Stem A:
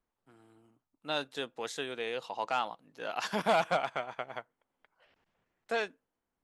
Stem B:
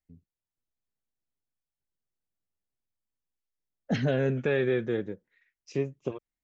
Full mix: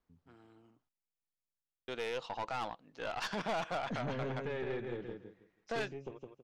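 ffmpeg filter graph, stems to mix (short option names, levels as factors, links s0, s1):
-filter_complex "[0:a]lowpass=f=6300:w=0.5412,lowpass=f=6300:w=1.3066,alimiter=limit=0.0708:level=0:latency=1:release=20,volume=1.19,asplit=3[s0][s1][s2];[s0]atrim=end=0.89,asetpts=PTS-STARTPTS,afade=t=out:st=0.886:d=0.004:c=hsin[s3];[s1]atrim=start=0.89:end=1.88,asetpts=PTS-STARTPTS,volume=0[s4];[s2]atrim=start=1.88,asetpts=PTS-STARTPTS,afade=t=in:d=0.004:c=hsin[s5];[s3][s4][s5]concat=n=3:v=0:a=1[s6];[1:a]volume=0.316,asplit=2[s7][s8];[s8]volume=0.562,aecho=0:1:162|324|486|648:1|0.23|0.0529|0.0122[s9];[s6][s7][s9]amix=inputs=3:normalize=0,aeval=exprs='(tanh(35.5*val(0)+0.4)-tanh(0.4))/35.5':c=same"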